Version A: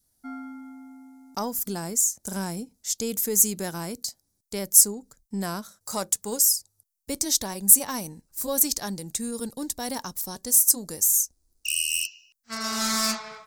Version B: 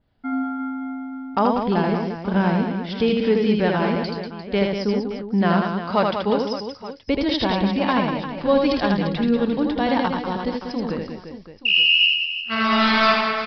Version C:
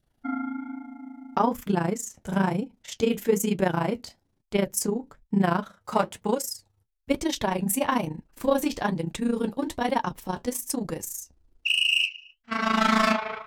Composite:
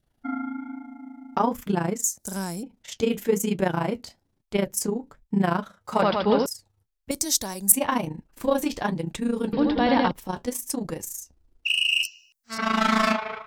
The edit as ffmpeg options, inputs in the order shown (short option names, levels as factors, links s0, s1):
-filter_complex "[0:a]asplit=3[s0][s1][s2];[1:a]asplit=2[s3][s4];[2:a]asplit=6[s5][s6][s7][s8][s9][s10];[s5]atrim=end=2.042[s11];[s0]atrim=start=2.038:end=2.632[s12];[s6]atrim=start=2.628:end=6.022[s13];[s3]atrim=start=6.018:end=6.462[s14];[s7]atrim=start=6.458:end=7.112[s15];[s1]atrim=start=7.108:end=7.722[s16];[s8]atrim=start=7.718:end=9.532[s17];[s4]atrim=start=9.528:end=10.112[s18];[s9]atrim=start=10.108:end=12.032[s19];[s2]atrim=start=12.028:end=12.582[s20];[s10]atrim=start=12.578[s21];[s11][s12]acrossfade=d=0.004:c1=hsin:c2=hsin[s22];[s22][s13]acrossfade=d=0.004:c1=hsin:c2=hsin[s23];[s23][s14]acrossfade=d=0.004:c1=hsin:c2=hsin[s24];[s24][s15]acrossfade=d=0.004:c1=hsin:c2=hsin[s25];[s25][s16]acrossfade=d=0.004:c1=hsin:c2=hsin[s26];[s26][s17]acrossfade=d=0.004:c1=hsin:c2=hsin[s27];[s27][s18]acrossfade=d=0.004:c1=hsin:c2=hsin[s28];[s28][s19]acrossfade=d=0.004:c1=hsin:c2=hsin[s29];[s29][s20]acrossfade=d=0.004:c1=hsin:c2=hsin[s30];[s30][s21]acrossfade=d=0.004:c1=hsin:c2=hsin"